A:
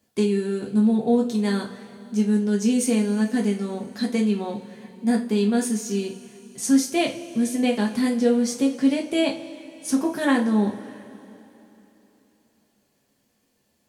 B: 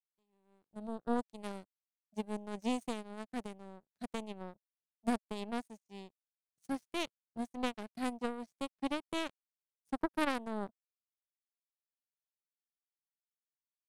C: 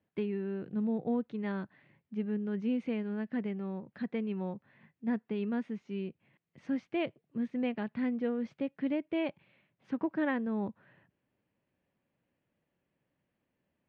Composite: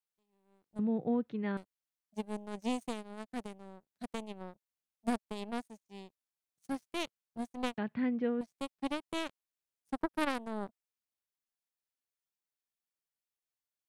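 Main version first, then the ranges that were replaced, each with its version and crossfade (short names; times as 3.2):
B
0.79–1.57 from C
7.78–8.41 from C
not used: A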